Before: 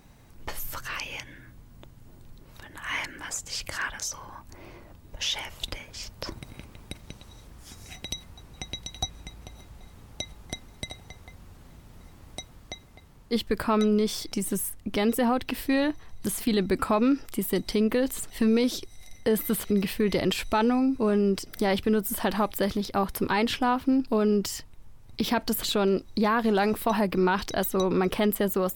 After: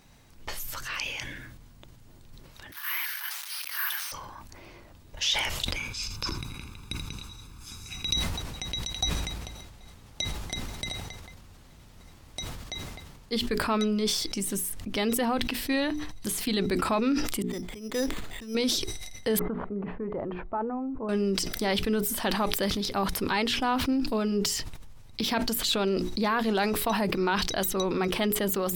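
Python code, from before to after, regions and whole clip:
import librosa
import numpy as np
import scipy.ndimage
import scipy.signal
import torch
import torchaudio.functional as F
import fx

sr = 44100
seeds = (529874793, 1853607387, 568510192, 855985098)

y = fx.chain(x, sr, fx.delta_mod(bps=32000, step_db=-39.5),
    fx.highpass(hz=1000.0, slope=24),
    fx.resample_bad(factor=3, down='none', up='zero_stuff'), at=(2.72, 4.12))
y = fx.chain(y, sr, fx.comb(ms=0.8, depth=0.74),
    fx.echo_single(ms=82, db=-13.0), at=(5.76, 8.14))
y = fx.chain(y, sr, fx.resample_bad(factor=8, down='filtered', up='hold'),
    fx.auto_swell(attack_ms=259.0),
    fx.upward_expand(threshold_db=-37.0, expansion=1.5), at=(17.42, 18.55))
y = fx.chain(y, sr, fx.lowpass(hz=1100.0, slope=24),
    fx.low_shelf(hz=490.0, db=-8.0), at=(19.39, 21.09))
y = fx.peak_eq(y, sr, hz=4500.0, db=6.0, octaves=2.4)
y = fx.hum_notches(y, sr, base_hz=60, count=7)
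y = fx.sustainer(y, sr, db_per_s=34.0)
y = y * librosa.db_to_amplitude(-3.5)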